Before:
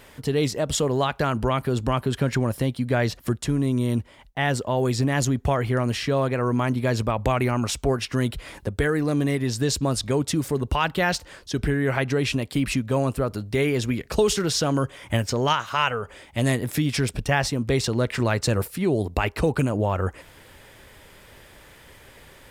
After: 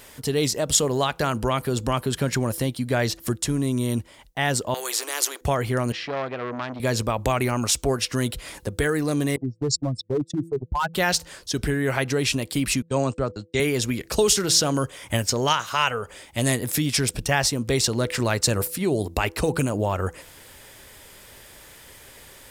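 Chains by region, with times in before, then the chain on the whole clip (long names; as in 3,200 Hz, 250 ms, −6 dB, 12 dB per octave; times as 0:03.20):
0:04.74–0:05.41: Chebyshev high-pass with heavy ripple 320 Hz, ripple 6 dB + every bin compressed towards the loudest bin 2 to 1
0:05.92–0:06.80: high-pass filter 330 Hz 6 dB per octave + high-frequency loss of the air 240 metres + saturating transformer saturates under 1,300 Hz
0:09.36–0:10.94: expanding power law on the bin magnitudes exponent 2.9 + noise gate −26 dBFS, range −32 dB + gain into a clipping stage and back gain 18 dB
0:12.82–0:13.60: noise gate −32 dBFS, range −44 dB + linear-phase brick-wall low-pass 8,700 Hz + multiband upward and downward expander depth 70%
whole clip: bass and treble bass −2 dB, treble +9 dB; hum removal 166 Hz, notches 3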